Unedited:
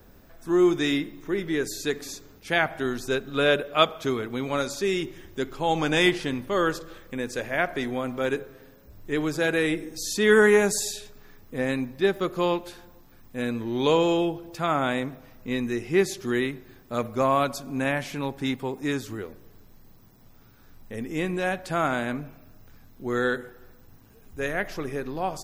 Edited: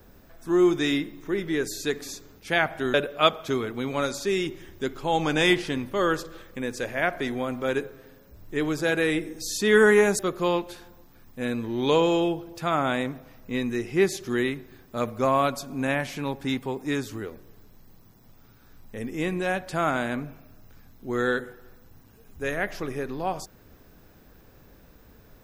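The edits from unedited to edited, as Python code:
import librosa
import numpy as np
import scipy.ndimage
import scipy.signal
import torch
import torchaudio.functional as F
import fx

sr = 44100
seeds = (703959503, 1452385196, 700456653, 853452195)

y = fx.edit(x, sr, fx.cut(start_s=2.94, length_s=0.56),
    fx.cut(start_s=10.75, length_s=1.41), tone=tone)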